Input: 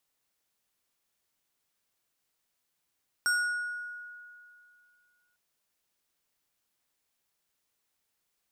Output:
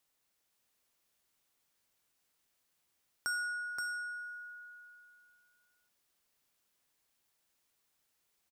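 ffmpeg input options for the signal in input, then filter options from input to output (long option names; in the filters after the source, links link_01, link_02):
-f lavfi -i "aevalsrc='0.075*pow(10,-3*t/2.44)*sin(2*PI*1450*t+0.83*pow(10,-3*t/1.3)*sin(2*PI*4.82*1450*t))':duration=2.1:sample_rate=44100"
-filter_complex "[0:a]acompressor=threshold=-47dB:ratio=1.5,asplit=2[link_01][link_02];[link_02]aecho=0:1:525:0.596[link_03];[link_01][link_03]amix=inputs=2:normalize=0"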